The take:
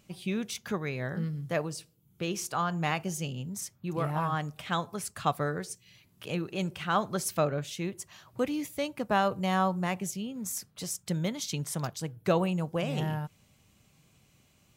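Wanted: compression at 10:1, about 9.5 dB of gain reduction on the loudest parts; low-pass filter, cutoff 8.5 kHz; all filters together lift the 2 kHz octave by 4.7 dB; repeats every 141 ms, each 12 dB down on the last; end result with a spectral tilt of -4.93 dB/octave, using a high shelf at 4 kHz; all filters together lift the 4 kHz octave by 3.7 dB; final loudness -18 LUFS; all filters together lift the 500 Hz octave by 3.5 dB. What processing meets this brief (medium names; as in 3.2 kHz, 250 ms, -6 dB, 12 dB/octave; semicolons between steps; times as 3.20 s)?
low-pass 8.5 kHz; peaking EQ 500 Hz +4 dB; peaking EQ 2 kHz +6 dB; treble shelf 4 kHz -7.5 dB; peaking EQ 4 kHz +7 dB; compression 10:1, threshold -27 dBFS; feedback delay 141 ms, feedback 25%, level -12 dB; trim +16 dB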